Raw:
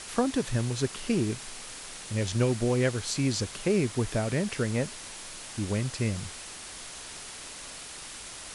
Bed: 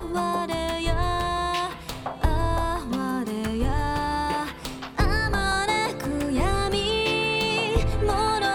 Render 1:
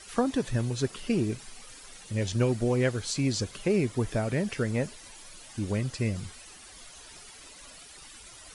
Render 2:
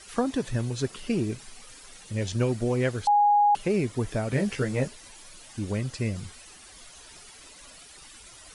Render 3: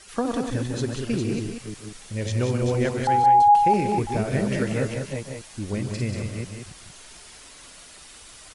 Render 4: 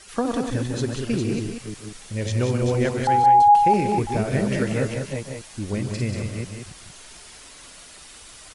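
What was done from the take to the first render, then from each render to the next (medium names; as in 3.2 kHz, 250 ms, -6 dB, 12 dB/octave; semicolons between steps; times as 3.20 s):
noise reduction 12 dB, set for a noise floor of -43 dBFS
3.07–3.55 s: bleep 825 Hz -16.5 dBFS; 4.30–4.88 s: doubling 15 ms -2.5 dB
chunks repeated in reverse 249 ms, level -4.5 dB; loudspeakers at several distances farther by 51 m -9 dB, 64 m -6 dB
trim +1.5 dB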